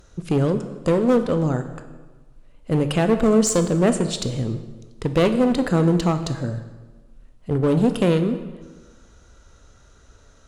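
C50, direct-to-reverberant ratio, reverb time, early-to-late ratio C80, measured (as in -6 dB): 10.5 dB, 8.5 dB, 1.3 s, 12.0 dB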